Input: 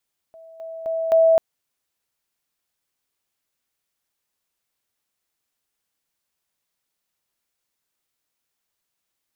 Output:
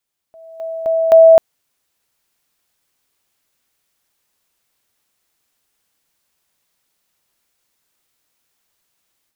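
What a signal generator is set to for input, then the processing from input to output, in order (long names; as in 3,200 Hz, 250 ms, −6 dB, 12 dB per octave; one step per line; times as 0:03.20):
level staircase 653 Hz −41.5 dBFS, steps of 10 dB, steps 4, 0.26 s 0.00 s
automatic gain control gain up to 10 dB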